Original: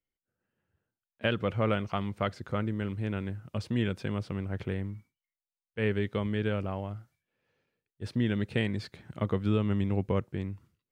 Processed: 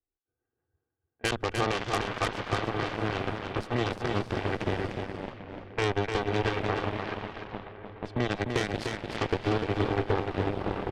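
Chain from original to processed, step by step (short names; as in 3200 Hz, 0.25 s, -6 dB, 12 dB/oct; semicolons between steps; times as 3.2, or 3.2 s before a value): high shelf 4300 Hz -5.5 dB; comb 2.6 ms, depth 94%; diffused feedback echo 0.644 s, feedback 53%, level -5.5 dB; compressor 4:1, threshold -27 dBFS, peak gain reduction 7 dB; added harmonics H 4 -14 dB, 5 -13 dB, 7 -8 dB, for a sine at -17.5 dBFS; low-pass opened by the level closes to 1200 Hz, open at -29.5 dBFS; echo 0.299 s -5.5 dB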